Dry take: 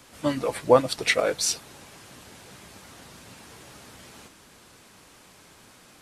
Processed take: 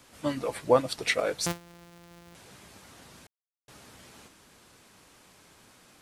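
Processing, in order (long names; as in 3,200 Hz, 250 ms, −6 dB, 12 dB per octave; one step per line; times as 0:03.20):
0:01.46–0:02.35: samples sorted by size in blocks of 256 samples
0:03.27–0:03.68: silence
level −4.5 dB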